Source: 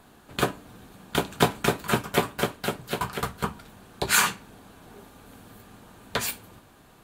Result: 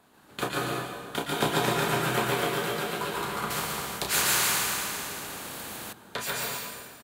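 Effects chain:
high-pass filter 190 Hz 6 dB per octave
loudspeakers that aren't time-aligned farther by 11 metres −6 dB, 49 metres −2 dB
dense smooth reverb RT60 1.7 s, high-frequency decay 0.85×, pre-delay 105 ms, DRR −2.5 dB
0:03.50–0:05.93: every bin compressed towards the loudest bin 2 to 1
level −6.5 dB

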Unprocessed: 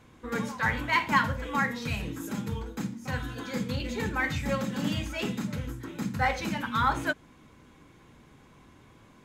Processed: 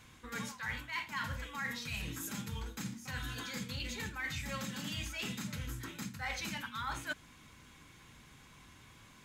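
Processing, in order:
guitar amp tone stack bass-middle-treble 5-5-5
reversed playback
downward compressor 6 to 1, threshold −49 dBFS, peak gain reduction 17 dB
reversed playback
level +12 dB

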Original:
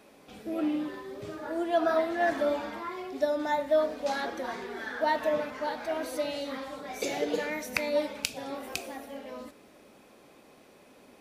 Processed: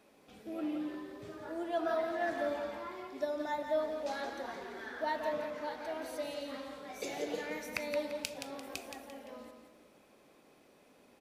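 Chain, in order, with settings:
repeating echo 172 ms, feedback 37%, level −7 dB
level −8 dB

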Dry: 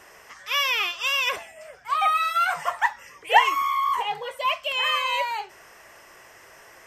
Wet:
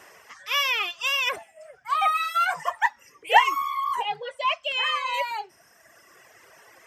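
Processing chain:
0:04.15–0:05.14: low-pass filter 6,800 Hz 12 dB per octave
reverb reduction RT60 1.6 s
high-pass filter 89 Hz 12 dB per octave

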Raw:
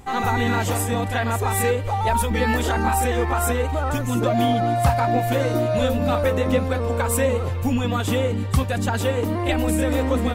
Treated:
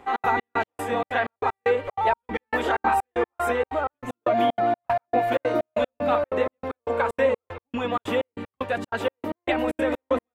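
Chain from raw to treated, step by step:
three-way crossover with the lows and the highs turned down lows −19 dB, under 290 Hz, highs −18 dB, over 3,100 Hz
gate pattern "xx.xx..x..x" 190 BPM −60 dB
level +1.5 dB

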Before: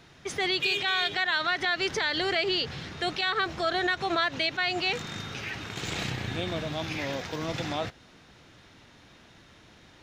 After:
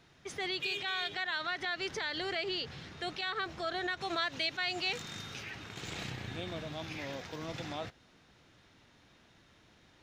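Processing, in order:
0:04.01–0:05.43: high-shelf EQ 3,600 Hz +7.5 dB
level −8.5 dB

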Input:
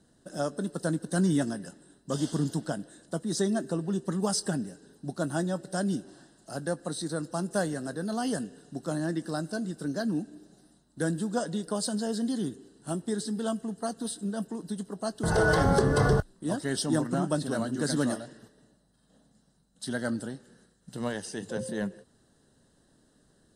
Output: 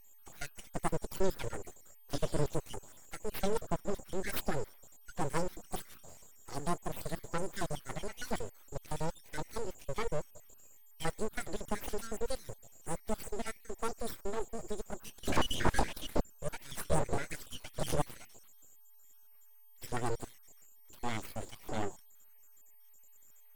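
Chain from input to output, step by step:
time-frequency cells dropped at random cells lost 57%
steady tone 7,200 Hz −54 dBFS
full-wave rectification

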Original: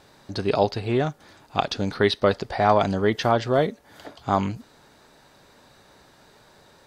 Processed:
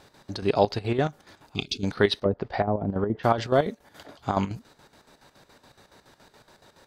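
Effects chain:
0:02.17–0:03.23: treble cut that deepens with the level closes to 420 Hz, closed at −15.5 dBFS
square-wave tremolo 7.1 Hz, depth 65%, duty 60%
0:01.55–0:01.84: gain on a spectral selection 440–2,100 Hz −24 dB

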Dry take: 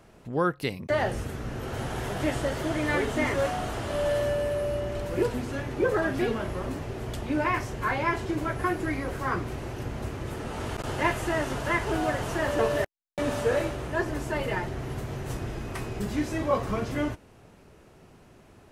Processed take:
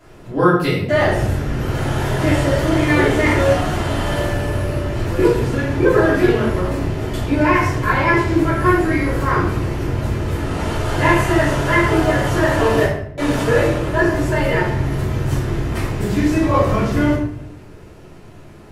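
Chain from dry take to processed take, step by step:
rectangular room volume 150 cubic metres, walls mixed, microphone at 3 metres

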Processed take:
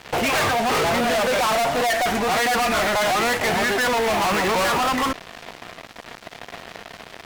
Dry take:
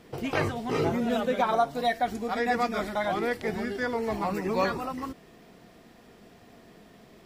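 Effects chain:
flat-topped bell 1,300 Hz +13 dB 2.8 octaves
fuzz pedal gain 37 dB, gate −42 dBFS
level −6 dB

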